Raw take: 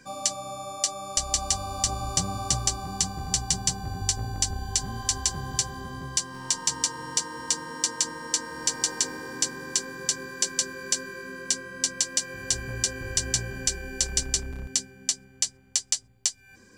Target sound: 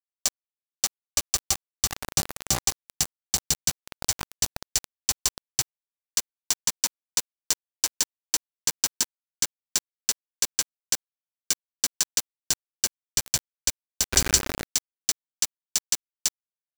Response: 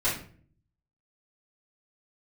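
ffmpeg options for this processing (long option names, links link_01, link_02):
-filter_complex "[0:a]asettb=1/sr,asplit=3[link_01][link_02][link_03];[link_01]atrim=end=14.114[link_04];[link_02]atrim=start=14.11:end=14.64,asetpts=PTS-STARTPTS,afade=type=in:duration=0.004:curve=qsin,afade=type=out:start_time=0.526:duration=0.004:curve=qsin,acontrast=42[link_05];[link_03]atrim=start=14.636[link_06];[link_04][link_05]acrossfade=duration=0.004:curve1=hsin:curve2=qsin[link_07];[link_07][link_06]acrossfade=duration=0.004:curve1=qsin:curve2=hsin,acrusher=bits=3:mix=0:aa=0.000001"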